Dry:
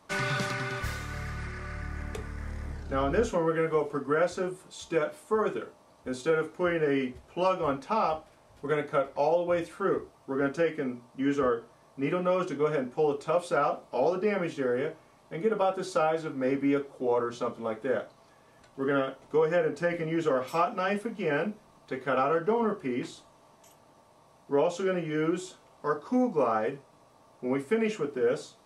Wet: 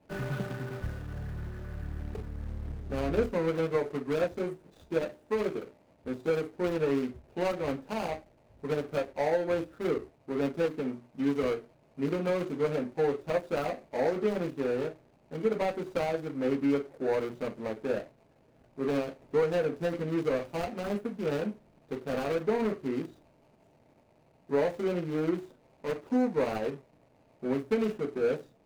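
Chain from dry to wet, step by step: median filter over 41 samples

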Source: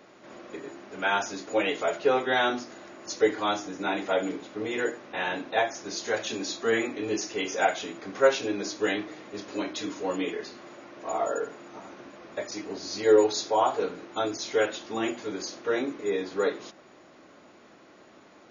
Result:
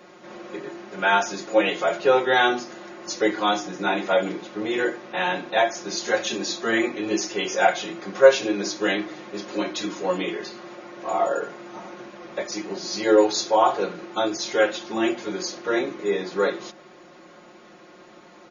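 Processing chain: bell 89 Hz -7 dB 0.44 oct; comb 5.6 ms, depth 73%; gain +3.5 dB

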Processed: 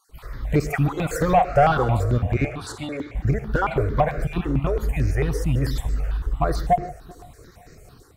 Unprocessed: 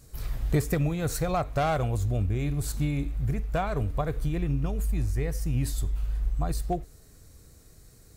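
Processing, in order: random spectral dropouts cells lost 22%; AGC gain up to 10 dB; overdrive pedal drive 17 dB, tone 1100 Hz, clips at -4.5 dBFS; 2.45–3.15 BPF 400–7800 Hz; darkening echo 0.389 s, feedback 40%, low-pass 2000 Hz, level -20 dB; non-linear reverb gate 0.17 s rising, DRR 10.5 dB; step phaser 9 Hz 650–3300 Hz

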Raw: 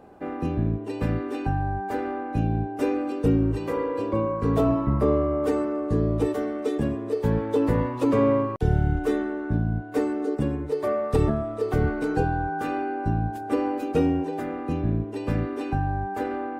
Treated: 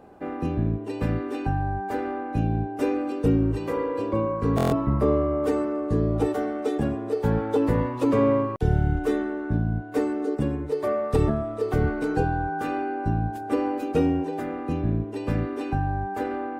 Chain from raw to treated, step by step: 6.14–7.57 small resonant body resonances 780/1400 Hz, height 11 dB; stuck buffer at 4.56, samples 1024, times 6

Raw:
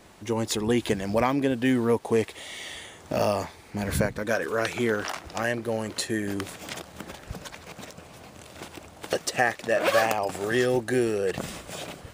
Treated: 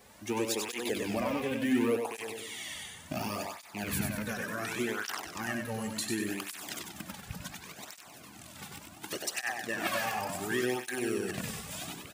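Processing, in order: rattling part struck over -33 dBFS, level -26 dBFS; high shelf 10000 Hz +11.5 dB; limiter -16.5 dBFS, peak gain reduction 11.5 dB; bell 150 Hz -11.5 dB 0.53 oct, from 2.17 s 510 Hz; feedback echo 96 ms, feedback 42%, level -4.5 dB; tape flanging out of phase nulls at 0.69 Hz, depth 3.3 ms; gain -2 dB

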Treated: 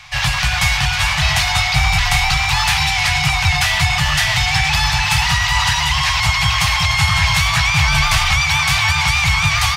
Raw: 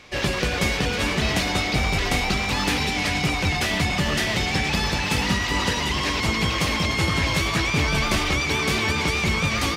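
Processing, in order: elliptic band-stop 140–770 Hz, stop band 40 dB; gain +9 dB

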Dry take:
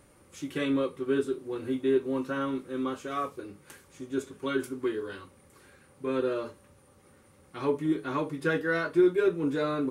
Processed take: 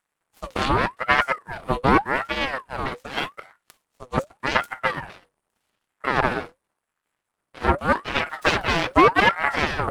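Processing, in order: 8.26–8.94 zero-crossing step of -41 dBFS; added harmonics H 5 -35 dB, 6 -9 dB, 7 -16 dB, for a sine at -13 dBFS; ring modulator with a swept carrier 960 Hz, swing 50%, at 0.85 Hz; gain +8 dB

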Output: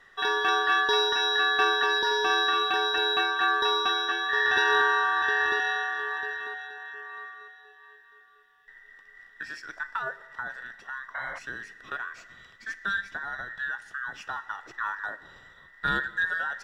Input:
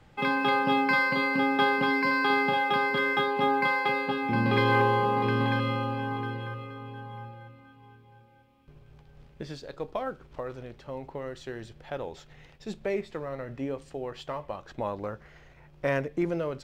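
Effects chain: band inversion scrambler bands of 2000 Hz; Schroeder reverb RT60 1.9 s, DRR 16 dB; painted sound noise, 11.14–11.39, 510–2200 Hz -39 dBFS

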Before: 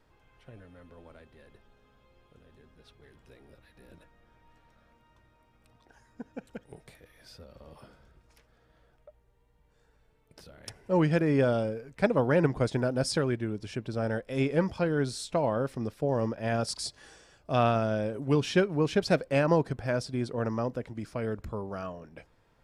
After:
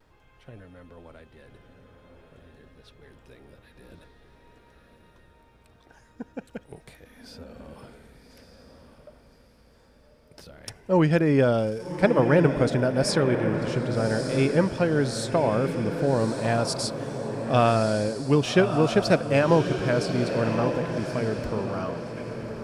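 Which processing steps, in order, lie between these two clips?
diffused feedback echo 1.178 s, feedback 40%, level -7 dB; vibrato 0.49 Hz 18 cents; gain +4.5 dB

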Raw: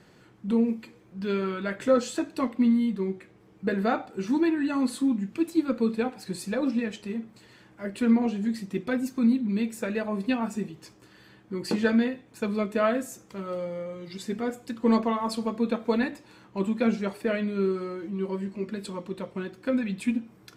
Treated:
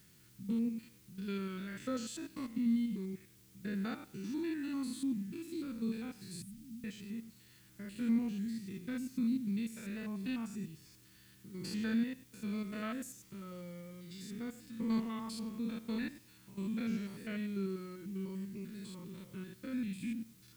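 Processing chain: stepped spectrum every 0.1 s; 6.42–6.84 elliptic band-stop 180–9600 Hz; in parallel at -10.5 dB: requantised 8-bit, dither triangular; on the sum: passive tone stack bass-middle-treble 6-0-2; gain +7.5 dB

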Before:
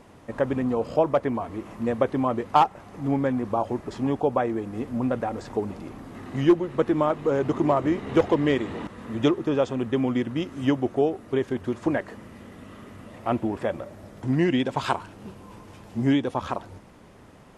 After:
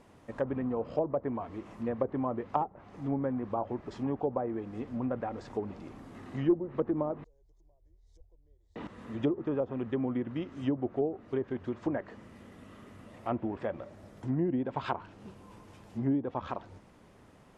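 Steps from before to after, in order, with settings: treble ducked by the level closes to 640 Hz, closed at -17.5 dBFS; 7.24–8.76 inverse Chebyshev band-stop 110–2900 Hz, stop band 40 dB; gain -7.5 dB

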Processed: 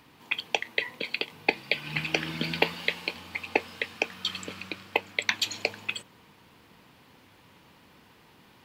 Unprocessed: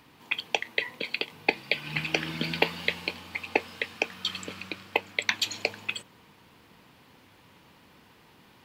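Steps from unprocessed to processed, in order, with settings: 2.74–3.16 HPF 200 Hz 6 dB/oct

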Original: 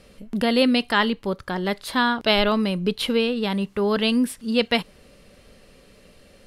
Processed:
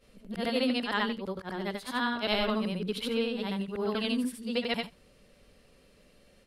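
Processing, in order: short-time reversal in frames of 0.193 s; gain -6 dB

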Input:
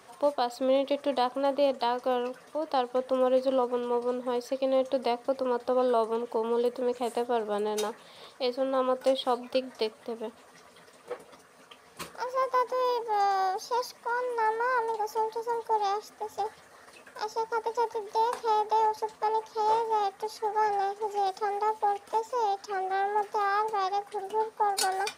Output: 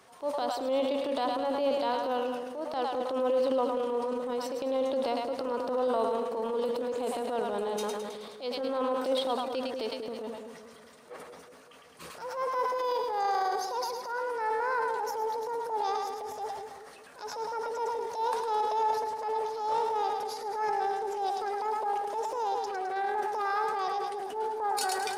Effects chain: split-band echo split 610 Hz, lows 0.189 s, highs 0.106 s, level -6 dB; transient shaper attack -8 dB, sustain +6 dB; gain -3 dB

